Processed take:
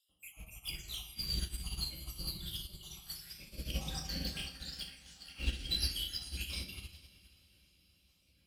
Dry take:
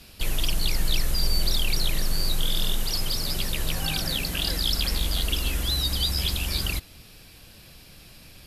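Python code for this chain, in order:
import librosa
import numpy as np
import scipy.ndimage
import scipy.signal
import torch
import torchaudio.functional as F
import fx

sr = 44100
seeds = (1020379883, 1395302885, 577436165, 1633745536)

y = fx.spec_dropout(x, sr, seeds[0], share_pct=80)
y = fx.lowpass(y, sr, hz=8700.0, slope=24, at=(3.37, 5.7))
y = fx.spec_gate(y, sr, threshold_db=-30, keep='strong')
y = scipy.signal.sosfilt(scipy.signal.butter(4, 44.0, 'highpass', fs=sr, output='sos'), y)
y = fx.high_shelf(y, sr, hz=2900.0, db=8.0)
y = fx.quant_companded(y, sr, bits=6)
y = fx.rotary(y, sr, hz=7.0)
y = np.clip(y, -10.0 ** (-24.5 / 20.0), 10.0 ** (-24.5 / 20.0))
y = fx.echo_diffused(y, sr, ms=463, feedback_pct=60, wet_db=-8.5)
y = fx.room_shoebox(y, sr, seeds[1], volume_m3=450.0, walls='mixed', distance_m=2.2)
y = fx.upward_expand(y, sr, threshold_db=-36.0, expansion=2.5)
y = y * librosa.db_to_amplitude(-5.5)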